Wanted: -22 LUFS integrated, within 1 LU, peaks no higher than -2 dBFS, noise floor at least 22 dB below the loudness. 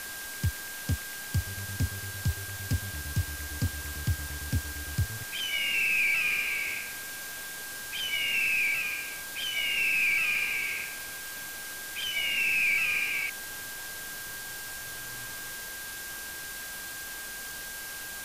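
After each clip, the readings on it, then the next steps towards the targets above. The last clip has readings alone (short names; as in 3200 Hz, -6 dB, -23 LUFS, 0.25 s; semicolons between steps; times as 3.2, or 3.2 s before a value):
steady tone 1600 Hz; tone level -41 dBFS; noise floor -40 dBFS; noise floor target -52 dBFS; loudness -30.0 LUFS; peak -17.5 dBFS; loudness target -22.0 LUFS
-> notch 1600 Hz, Q 30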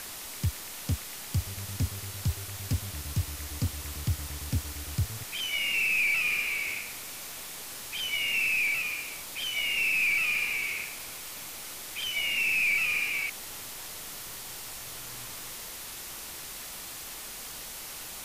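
steady tone none; noise floor -41 dBFS; noise floor target -52 dBFS
-> denoiser 11 dB, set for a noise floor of -41 dBFS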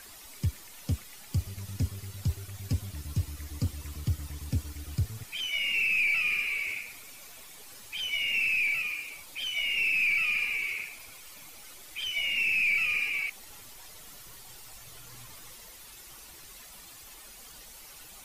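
noise floor -49 dBFS; noise floor target -51 dBFS
-> denoiser 6 dB, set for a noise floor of -49 dBFS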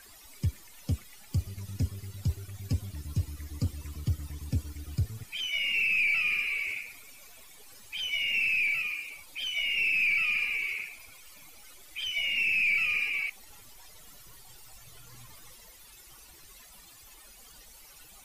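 noise floor -53 dBFS; loudness -29.0 LUFS; peak -18.5 dBFS; loudness target -22.0 LUFS
-> gain +7 dB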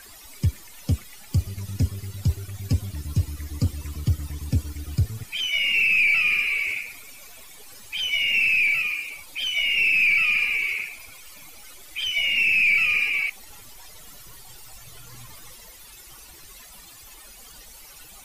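loudness -22.0 LUFS; peak -11.5 dBFS; noise floor -46 dBFS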